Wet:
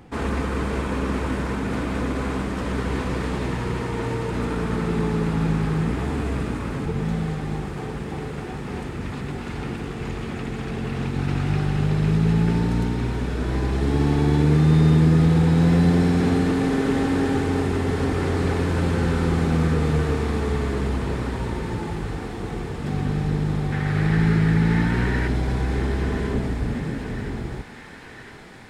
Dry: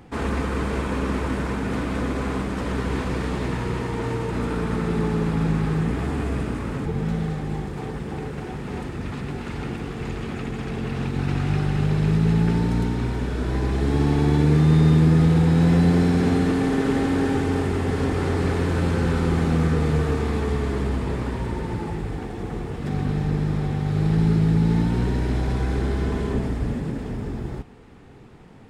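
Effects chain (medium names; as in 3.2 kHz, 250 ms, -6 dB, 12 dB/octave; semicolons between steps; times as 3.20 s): 23.72–25.28 s: peaking EQ 1.8 kHz +13 dB 1 oct; thinning echo 1013 ms, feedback 82%, high-pass 650 Hz, level -10.5 dB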